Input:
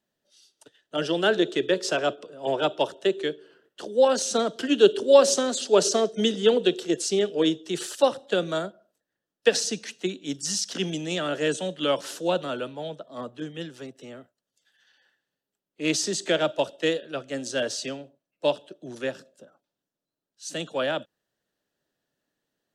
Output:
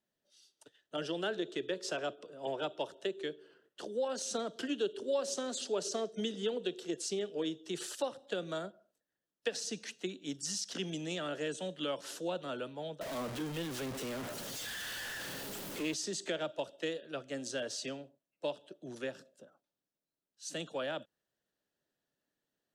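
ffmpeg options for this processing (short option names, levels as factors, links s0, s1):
-filter_complex "[0:a]asettb=1/sr,asplit=3[s0][s1][s2];[s0]atrim=end=13.014[s3];[s1]atrim=start=13.01:end=15.94,asetpts=PTS-STARTPTS,afade=t=in:d=0.004:c=qsin,afade=t=out:st=2.926:d=0.004:c=qsin,aeval=exprs='val(0)+0.5*0.0355*sgn(val(0))':c=same[s4];[s2]atrim=start=15.936[s5];[s3][s4]acrossfade=d=0.004:c1=hsin:c2=qsin[s6];[s6][s5]acrossfade=d=0.004:c1=qsin:c2=hsin,acompressor=threshold=0.0355:ratio=2.5,volume=0.473"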